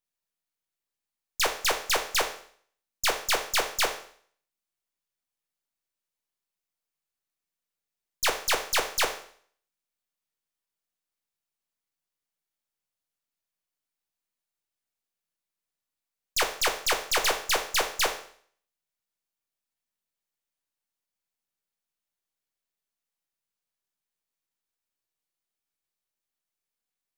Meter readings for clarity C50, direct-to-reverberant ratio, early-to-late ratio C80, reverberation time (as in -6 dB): 10.0 dB, 4.5 dB, 13.5 dB, 0.55 s